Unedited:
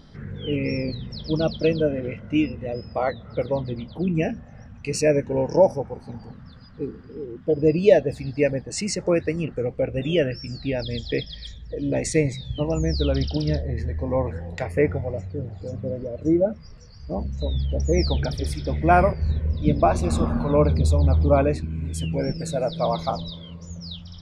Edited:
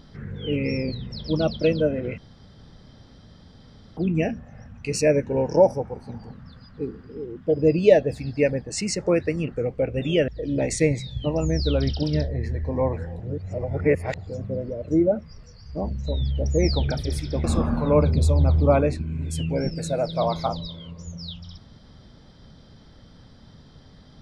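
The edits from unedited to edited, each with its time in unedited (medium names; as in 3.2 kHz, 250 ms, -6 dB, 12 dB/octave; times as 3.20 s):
2.18–3.97 s: room tone
10.28–11.62 s: delete
14.54–15.52 s: reverse
18.78–20.07 s: delete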